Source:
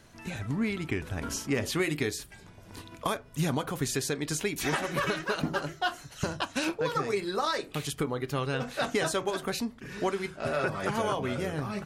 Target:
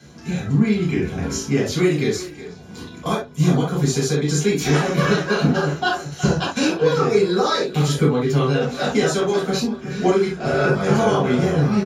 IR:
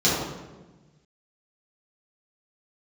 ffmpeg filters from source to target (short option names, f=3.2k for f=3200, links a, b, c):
-filter_complex "[1:a]atrim=start_sample=2205,atrim=end_sample=3528[a];[0:a][a]afir=irnorm=-1:irlink=0,dynaudnorm=f=120:g=11:m=11.5dB,asplit=2[b][c];[c]adelay=370,highpass=300,lowpass=3.4k,asoftclip=type=hard:threshold=-10dB,volume=-13dB[d];[b][d]amix=inputs=2:normalize=0,volume=-5dB"